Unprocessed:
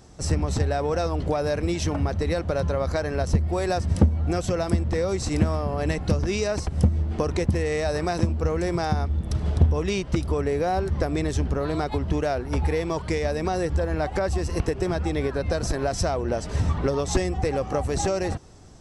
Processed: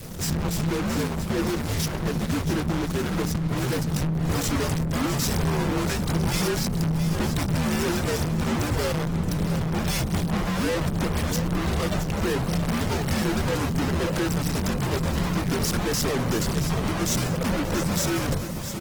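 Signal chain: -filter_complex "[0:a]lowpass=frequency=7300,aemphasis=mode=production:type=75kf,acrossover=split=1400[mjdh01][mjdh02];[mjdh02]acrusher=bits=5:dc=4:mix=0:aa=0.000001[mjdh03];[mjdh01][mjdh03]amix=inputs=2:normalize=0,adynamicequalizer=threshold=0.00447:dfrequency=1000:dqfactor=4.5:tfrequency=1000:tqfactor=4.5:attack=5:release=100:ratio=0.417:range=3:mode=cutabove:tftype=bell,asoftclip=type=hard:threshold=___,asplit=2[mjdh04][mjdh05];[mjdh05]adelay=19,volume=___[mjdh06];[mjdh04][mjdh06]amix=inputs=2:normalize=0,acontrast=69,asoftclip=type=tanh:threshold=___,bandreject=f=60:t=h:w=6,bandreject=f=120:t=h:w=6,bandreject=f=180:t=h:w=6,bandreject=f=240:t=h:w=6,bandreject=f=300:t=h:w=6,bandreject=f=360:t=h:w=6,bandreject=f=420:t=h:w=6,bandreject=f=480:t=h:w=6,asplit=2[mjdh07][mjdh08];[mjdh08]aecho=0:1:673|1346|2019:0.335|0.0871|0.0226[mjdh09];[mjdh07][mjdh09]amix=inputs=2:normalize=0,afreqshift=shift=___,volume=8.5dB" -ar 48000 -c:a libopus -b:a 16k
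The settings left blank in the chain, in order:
-24.5dB, -8.5dB, -32dB, -240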